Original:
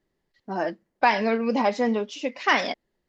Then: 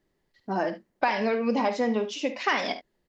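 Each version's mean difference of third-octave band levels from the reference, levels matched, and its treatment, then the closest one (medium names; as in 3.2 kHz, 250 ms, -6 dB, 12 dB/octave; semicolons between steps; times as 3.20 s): 3.0 dB: compression 3:1, threshold -25 dBFS, peak gain reduction 8.5 dB; early reflections 51 ms -13.5 dB, 73 ms -14.5 dB; trim +2 dB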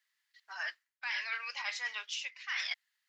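13.5 dB: high-pass 1.5 kHz 24 dB/octave; reverse; compression 16:1, threshold -38 dBFS, peak gain reduction 20 dB; reverse; trim +4.5 dB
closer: first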